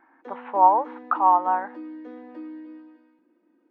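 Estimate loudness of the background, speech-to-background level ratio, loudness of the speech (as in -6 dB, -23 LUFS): -40.5 LUFS, 19.5 dB, -21.0 LUFS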